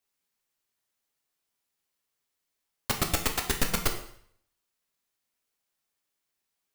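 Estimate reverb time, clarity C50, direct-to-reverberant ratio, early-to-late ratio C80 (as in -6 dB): 0.60 s, 9.0 dB, 3.0 dB, 11.5 dB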